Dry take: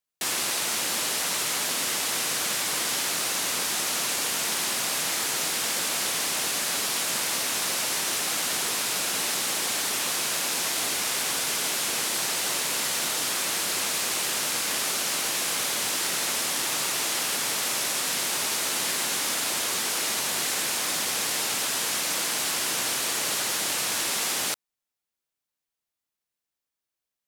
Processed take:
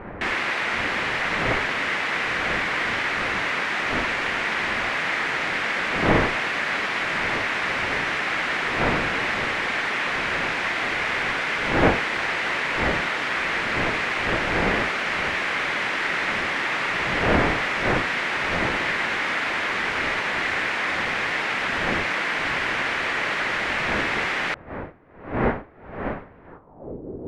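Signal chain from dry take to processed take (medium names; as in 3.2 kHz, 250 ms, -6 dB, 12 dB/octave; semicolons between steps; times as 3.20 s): wind noise 600 Hz -36 dBFS; low-pass sweep 2 kHz -> 400 Hz, 26.46–26.96 s; trim +4 dB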